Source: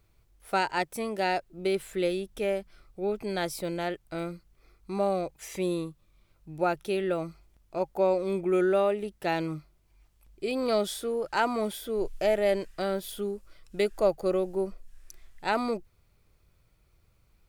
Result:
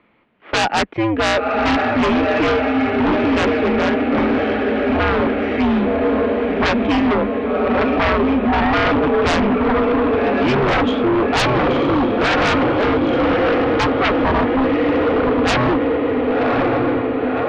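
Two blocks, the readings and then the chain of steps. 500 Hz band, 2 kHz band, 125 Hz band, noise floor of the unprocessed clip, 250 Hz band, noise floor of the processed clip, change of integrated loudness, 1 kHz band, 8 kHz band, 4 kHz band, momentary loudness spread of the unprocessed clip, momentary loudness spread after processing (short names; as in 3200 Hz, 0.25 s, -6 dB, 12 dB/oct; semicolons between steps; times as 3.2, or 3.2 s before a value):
+11.0 dB, +17.0 dB, +16.0 dB, -66 dBFS, +17.5 dB, -21 dBFS, +13.0 dB, +14.5 dB, n/a, +15.0 dB, 11 LU, 3 LU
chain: diffused feedback echo 1.088 s, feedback 66%, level -4 dB; mistuned SSB -120 Hz 260–3000 Hz; sine folder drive 14 dB, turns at -12.5 dBFS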